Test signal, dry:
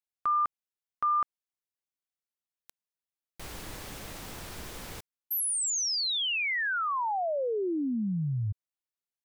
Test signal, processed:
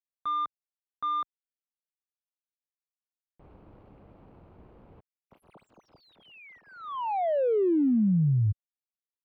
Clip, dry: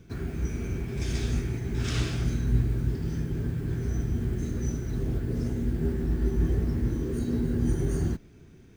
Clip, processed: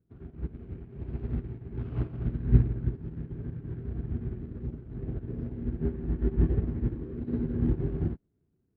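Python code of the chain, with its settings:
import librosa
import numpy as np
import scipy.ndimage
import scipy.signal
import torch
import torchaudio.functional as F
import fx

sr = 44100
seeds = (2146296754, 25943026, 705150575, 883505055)

y = scipy.ndimage.median_filter(x, 25, mode='constant')
y = fx.highpass(y, sr, hz=53.0, slope=6)
y = fx.air_absorb(y, sr, metres=450.0)
y = fx.upward_expand(y, sr, threshold_db=-40.0, expansion=2.5)
y = y * 10.0 ** (8.0 / 20.0)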